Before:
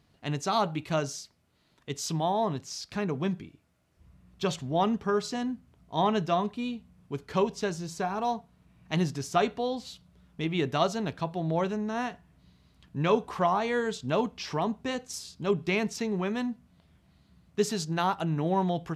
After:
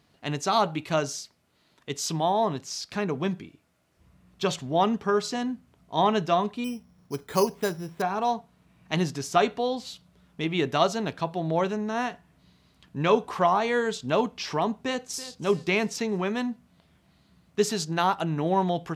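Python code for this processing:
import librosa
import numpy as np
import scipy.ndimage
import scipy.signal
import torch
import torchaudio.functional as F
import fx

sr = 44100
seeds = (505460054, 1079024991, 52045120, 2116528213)

y = fx.resample_bad(x, sr, factor=8, down='filtered', up='hold', at=(6.64, 8.02))
y = fx.echo_throw(y, sr, start_s=14.74, length_s=0.63, ms=330, feedback_pct=35, wet_db=-15.5)
y = fx.low_shelf(y, sr, hz=130.0, db=-10.0)
y = y * librosa.db_to_amplitude(4.0)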